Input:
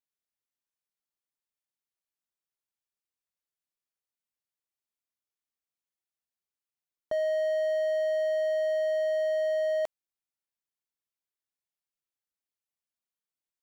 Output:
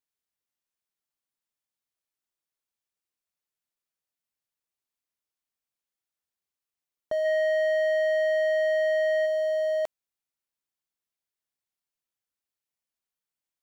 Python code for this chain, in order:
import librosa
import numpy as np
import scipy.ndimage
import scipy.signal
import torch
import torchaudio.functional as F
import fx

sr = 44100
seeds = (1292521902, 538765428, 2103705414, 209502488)

y = fx.peak_eq(x, sr, hz=1800.0, db=9.5, octaves=1.5, at=(7.24, 9.25), fade=0.02)
y = y * 10.0 ** (1.5 / 20.0)